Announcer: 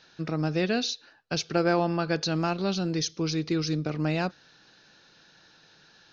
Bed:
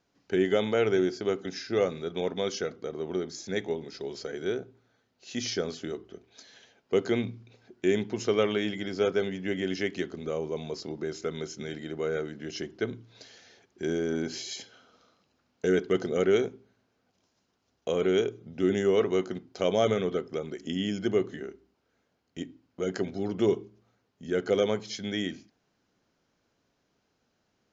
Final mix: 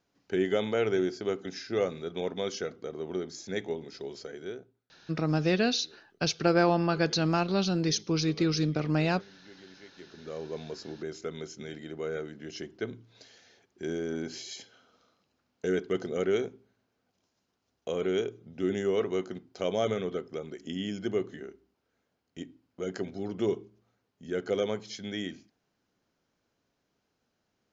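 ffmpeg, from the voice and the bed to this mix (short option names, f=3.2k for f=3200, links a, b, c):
-filter_complex "[0:a]adelay=4900,volume=0.5dB[a];[1:a]volume=16dB,afade=t=out:st=4.02:d=0.86:silence=0.1,afade=t=in:st=9.95:d=0.6:silence=0.11885[b];[a][b]amix=inputs=2:normalize=0"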